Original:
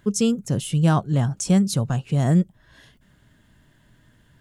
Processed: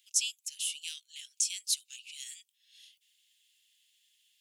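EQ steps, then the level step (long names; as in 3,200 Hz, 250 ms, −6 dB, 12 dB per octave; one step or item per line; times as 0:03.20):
Butterworth high-pass 2,500 Hz 48 dB per octave
0.0 dB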